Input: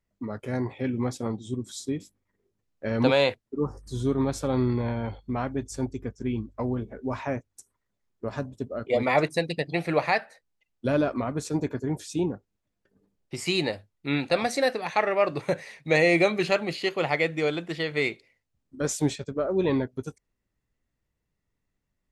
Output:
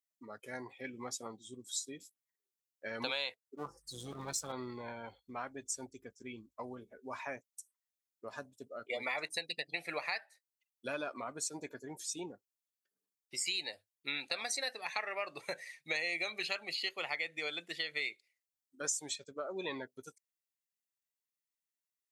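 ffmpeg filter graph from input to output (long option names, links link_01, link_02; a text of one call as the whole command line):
ffmpeg -i in.wav -filter_complex "[0:a]asettb=1/sr,asplit=3[link_01][link_02][link_03];[link_01]atrim=end=3.564[link_04];[link_02]atrim=start=3.56:end=4.52,asetpts=PTS-STARTPTS,afade=type=in:duration=0.004:curve=qsin,afade=type=out:start_time=0.956:duration=0.004:curve=qsin,asubboost=boost=9.5:cutoff=240,aecho=1:1:6:0.91,atrim=end_sample=42336,aeval=exprs='clip(val(0),-1,0.0251)':channel_layout=same[link_05];[link_03]atrim=start=4.516[link_06];[link_04][link_05]acrossfade=duration=0.004:curve1=hsin:curve2=qsin[link_07];[link_07][link_06]acrossfade=duration=0.004:curve1=qsin:curve2=hsin,afftdn=noise_reduction=13:noise_floor=-38,aderivative,acompressor=threshold=-44dB:ratio=4,volume=9.5dB" out.wav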